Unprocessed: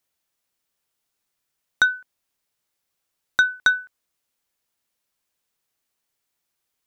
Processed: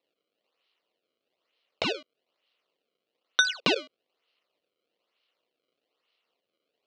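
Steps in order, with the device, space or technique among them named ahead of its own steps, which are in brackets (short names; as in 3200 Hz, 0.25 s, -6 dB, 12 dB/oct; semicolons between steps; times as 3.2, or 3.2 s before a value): circuit-bent sampling toy (decimation with a swept rate 28×, swing 160% 1.1 Hz; speaker cabinet 470–5300 Hz, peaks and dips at 480 Hz +4 dB, 860 Hz -8 dB, 1600 Hz -8 dB, 2900 Hz +10 dB, 4200 Hz +7 dB)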